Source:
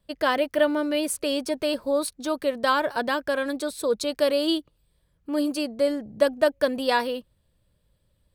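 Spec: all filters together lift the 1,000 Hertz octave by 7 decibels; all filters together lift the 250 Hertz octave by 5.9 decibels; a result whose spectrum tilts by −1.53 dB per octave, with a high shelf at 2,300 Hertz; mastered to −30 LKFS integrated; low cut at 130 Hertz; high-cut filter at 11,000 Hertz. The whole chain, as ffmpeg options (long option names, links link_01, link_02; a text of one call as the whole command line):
ffmpeg -i in.wav -af "highpass=130,lowpass=11000,equalizer=frequency=250:width_type=o:gain=7,equalizer=frequency=1000:width_type=o:gain=8.5,highshelf=frequency=2300:gain=-4,volume=-9dB" out.wav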